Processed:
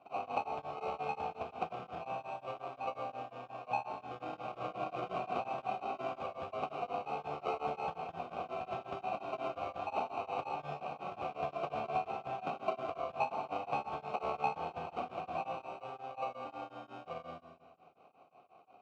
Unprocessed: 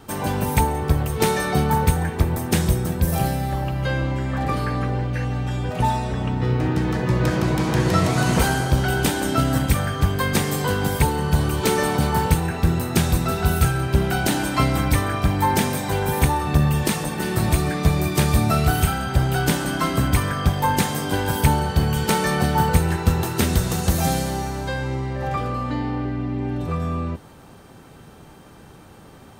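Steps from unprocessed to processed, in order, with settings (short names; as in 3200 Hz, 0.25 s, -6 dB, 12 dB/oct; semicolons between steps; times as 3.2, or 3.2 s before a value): HPF 83 Hz 24 dB/oct; bell 2000 Hz +8 dB 0.52 oct; notch 3300 Hz, Q 12; de-hum 192.2 Hz, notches 3; time stretch by phase-locked vocoder 0.64×; sample-rate reducer 1700 Hz, jitter 0%; vowel filter a; air absorption 74 m; Schroeder reverb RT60 1.5 s, combs from 28 ms, DRR 5 dB; beating tremolo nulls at 5.6 Hz; gain -1 dB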